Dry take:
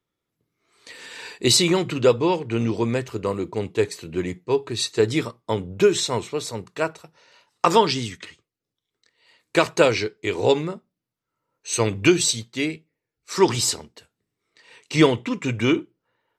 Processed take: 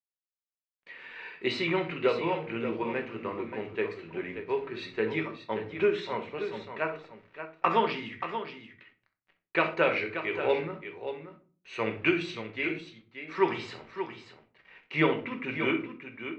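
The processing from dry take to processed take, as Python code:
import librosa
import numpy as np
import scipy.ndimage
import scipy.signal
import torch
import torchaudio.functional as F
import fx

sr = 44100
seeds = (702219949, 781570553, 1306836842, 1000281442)

y = fx.highpass(x, sr, hz=380.0, slope=6)
y = fx.quant_dither(y, sr, seeds[0], bits=8, dither='none')
y = fx.ladder_lowpass(y, sr, hz=2700.0, resonance_pct=40)
y = fx.echo_multitap(y, sr, ms=(64, 580), db=(-14.0, -9.5))
y = fx.room_shoebox(y, sr, seeds[1], volume_m3=260.0, walls='furnished', distance_m=1.1)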